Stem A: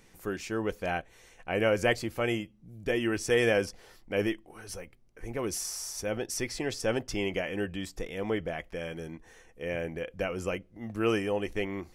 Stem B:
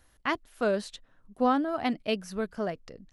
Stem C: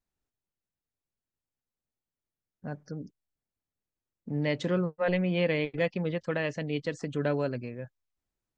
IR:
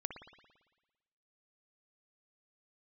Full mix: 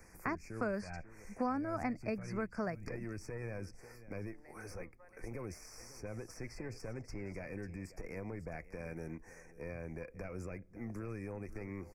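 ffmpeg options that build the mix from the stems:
-filter_complex "[0:a]acrossover=split=160[s0][s1];[s1]acompressor=threshold=0.0112:ratio=6[s2];[s0][s2]amix=inputs=2:normalize=0,volume=1.26,asplit=2[s3][s4];[s4]volume=0.075[s5];[1:a]lowpass=8300,volume=1.33[s6];[2:a]highpass=760,acompressor=threshold=0.00708:ratio=6,volume=0.211[s7];[s3][s7]amix=inputs=2:normalize=0,aeval=exprs='(tanh(25.1*val(0)+0.65)-tanh(0.65))/25.1':c=same,alimiter=level_in=2.37:limit=0.0631:level=0:latency=1:release=66,volume=0.422,volume=1[s8];[s5]aecho=0:1:541:1[s9];[s6][s8][s9]amix=inputs=3:normalize=0,acrossover=split=230|960|3800[s10][s11][s12][s13];[s10]acompressor=threshold=0.00891:ratio=4[s14];[s11]acompressor=threshold=0.00794:ratio=4[s15];[s12]acompressor=threshold=0.00794:ratio=4[s16];[s13]acompressor=threshold=0.001:ratio=4[s17];[s14][s15][s16][s17]amix=inputs=4:normalize=0,asuperstop=centerf=3400:order=12:qfactor=1.6"

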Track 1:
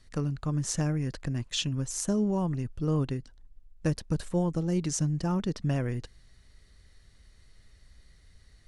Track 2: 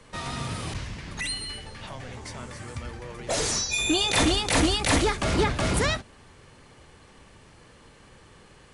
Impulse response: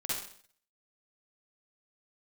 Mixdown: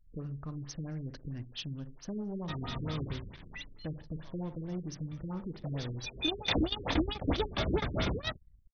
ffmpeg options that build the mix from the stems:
-filter_complex "[0:a]acompressor=threshold=0.01:ratio=1.5,asoftclip=type=tanh:threshold=0.0422,volume=0.596,asplit=3[s0][s1][s2];[s1]volume=0.251[s3];[1:a]equalizer=f=3500:w=7.8:g=12,aeval=exprs='sgn(val(0))*max(abs(val(0))-0.00422,0)':c=same,adelay=2350,volume=2.11,afade=t=out:st=3.07:d=0.65:silence=0.266073,afade=t=in:st=5.78:d=0.68:silence=0.251189[s4];[s2]apad=whole_len=488856[s5];[s4][s5]sidechaingate=range=0.0224:threshold=0.00112:ratio=16:detection=peak[s6];[2:a]atrim=start_sample=2205[s7];[s3][s7]afir=irnorm=-1:irlink=0[s8];[s0][s6][s8]amix=inputs=3:normalize=0,anlmdn=0.000631,highshelf=f=8600:g=4,afftfilt=real='re*lt(b*sr/1024,450*pow(6500/450,0.5+0.5*sin(2*PI*4.5*pts/sr)))':imag='im*lt(b*sr/1024,450*pow(6500/450,0.5+0.5*sin(2*PI*4.5*pts/sr)))':win_size=1024:overlap=0.75"

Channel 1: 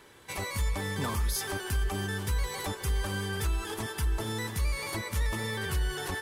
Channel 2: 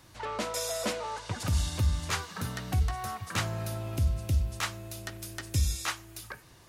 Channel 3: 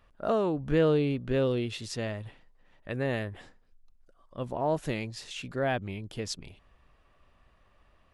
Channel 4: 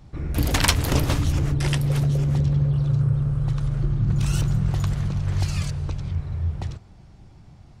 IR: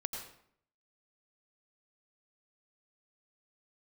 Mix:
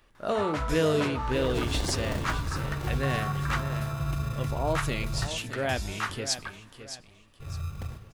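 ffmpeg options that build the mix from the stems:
-filter_complex "[0:a]bass=f=250:g=11,treble=f=4000:g=-13,volume=0.251[s0];[1:a]equalizer=f=1300:t=o:w=2.2:g=15,adelay=150,volume=0.501[s1];[2:a]highshelf=f=2700:g=12,volume=1.33,asplit=2[s2][s3];[s3]volume=0.282[s4];[3:a]acompressor=threshold=0.0398:ratio=2.5,acrusher=samples=35:mix=1:aa=0.000001,adelay=1200,volume=0.631,asplit=3[s5][s6][s7];[s5]atrim=end=5.27,asetpts=PTS-STARTPTS,afade=t=out:st=5.266:d=0.004:c=hsin[s8];[s6]atrim=start=5.27:end=7.4,asetpts=PTS-STARTPTS,volume=0[s9];[s7]atrim=start=7.4,asetpts=PTS-STARTPTS,afade=t=in:d=0.004:c=hsin[s10];[s8][s9][s10]concat=n=3:v=0:a=1,asplit=2[s11][s12];[s12]volume=0.562[s13];[4:a]atrim=start_sample=2205[s14];[s13][s14]afir=irnorm=-1:irlink=0[s15];[s4]aecho=0:1:613|1226|1839|2452|3065:1|0.32|0.102|0.0328|0.0105[s16];[s0][s1][s2][s11][s15][s16]amix=inputs=6:normalize=0,flanger=delay=2.5:depth=8.9:regen=-68:speed=1.4:shape=triangular"

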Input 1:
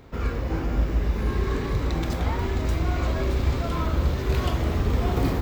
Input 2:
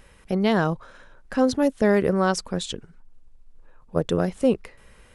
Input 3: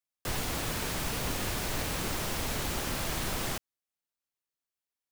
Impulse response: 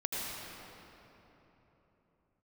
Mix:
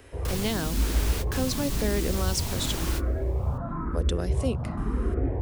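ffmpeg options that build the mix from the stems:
-filter_complex "[0:a]lowpass=f=1500:w=0.5412,lowpass=f=1500:w=1.3066,asplit=2[s0][s1];[s1]afreqshift=0.96[s2];[s0][s2]amix=inputs=2:normalize=1,volume=0.891[s3];[1:a]highpass=f=650:p=1,volume=1.19,asplit=2[s4][s5];[2:a]volume=1.12[s6];[s5]apad=whole_len=225423[s7];[s6][s7]sidechaingate=range=0.0398:threshold=0.00112:ratio=16:detection=peak[s8];[s3][s4][s8]amix=inputs=3:normalize=0,acrossover=split=360|3000[s9][s10][s11];[s10]acompressor=threshold=0.0178:ratio=6[s12];[s9][s12][s11]amix=inputs=3:normalize=0"

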